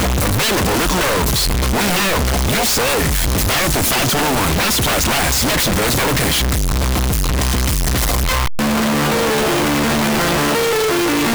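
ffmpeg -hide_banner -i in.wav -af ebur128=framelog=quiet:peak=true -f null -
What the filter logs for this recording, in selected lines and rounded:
Integrated loudness:
  I:         -15.5 LUFS
  Threshold: -25.5 LUFS
Loudness range:
  LRA:         1.9 LU
  Threshold: -35.5 LUFS
  LRA low:   -16.6 LUFS
  LRA high:  -14.7 LUFS
True peak:
  Peak:       -8.9 dBFS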